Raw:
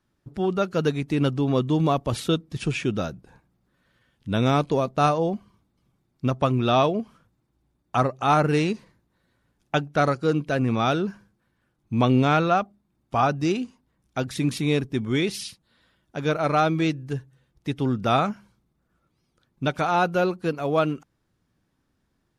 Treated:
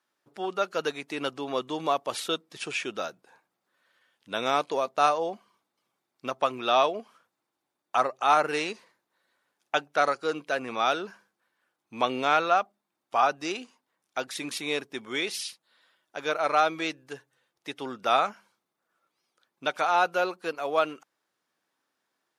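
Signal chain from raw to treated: HPF 590 Hz 12 dB/oct

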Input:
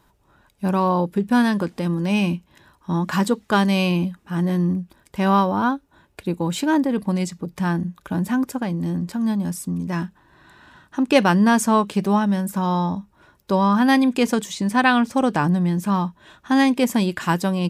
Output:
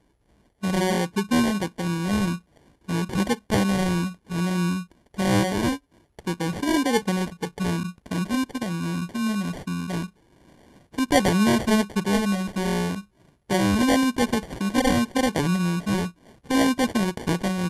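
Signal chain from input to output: 6.82–7.65 bell 450 Hz +12 dB 0.33 oct; sample-rate reducer 1300 Hz, jitter 0%; gain -3.5 dB; MP2 128 kbps 44100 Hz

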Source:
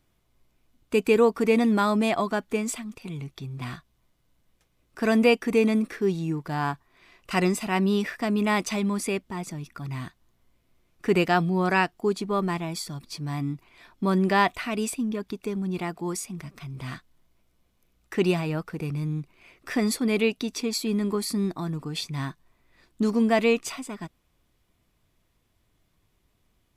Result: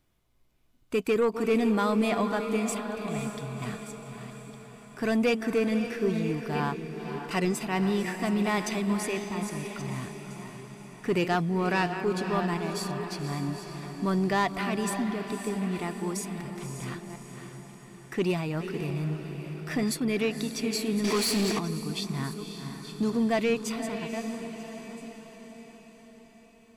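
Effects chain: reverse delay 0.66 s, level -12.5 dB; soft clip -15.5 dBFS, distortion -16 dB; on a send: diffused feedback echo 0.541 s, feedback 57%, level -8.5 dB; 21.04–21.59 on the sum: overdrive pedal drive 22 dB, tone 6900 Hz, clips at -16 dBFS; gain -2.5 dB

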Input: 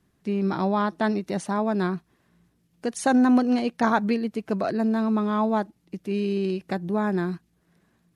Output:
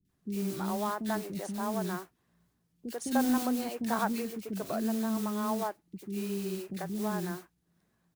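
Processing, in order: modulation noise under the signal 15 dB; three bands offset in time lows, highs, mids 50/90 ms, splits 350/2200 Hz; gain -7.5 dB

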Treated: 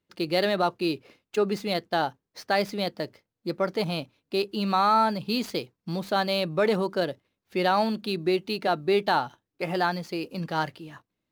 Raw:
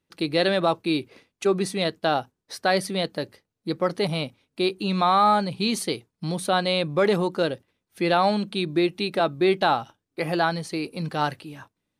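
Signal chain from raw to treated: median filter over 5 samples; varispeed +6%; gain -2.5 dB

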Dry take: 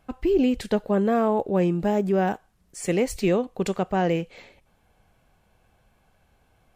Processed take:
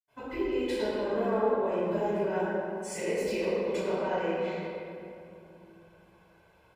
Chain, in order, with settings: HPF 400 Hz 6 dB/oct; comb 2 ms, depth 50%; compressor 5:1, threshold -32 dBFS, peak gain reduction 12 dB; reverb RT60 2.7 s, pre-delay 76 ms, DRR -60 dB; gain +5.5 dB

